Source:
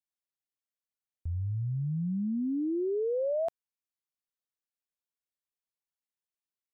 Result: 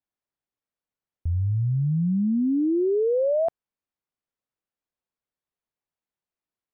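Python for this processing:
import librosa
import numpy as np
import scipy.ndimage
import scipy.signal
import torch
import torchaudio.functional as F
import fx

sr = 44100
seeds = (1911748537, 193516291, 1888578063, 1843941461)

y = fx.lowpass(x, sr, hz=1100.0, slope=6)
y = F.gain(torch.from_numpy(y), 8.5).numpy()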